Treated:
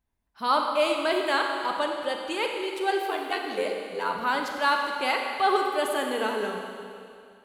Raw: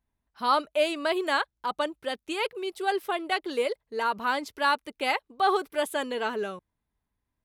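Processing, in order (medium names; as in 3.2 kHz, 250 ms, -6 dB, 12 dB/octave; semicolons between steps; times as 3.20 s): 3.05–4.17 s: ring modulator 46 Hz; Schroeder reverb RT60 2.4 s, combs from 32 ms, DRR 2 dB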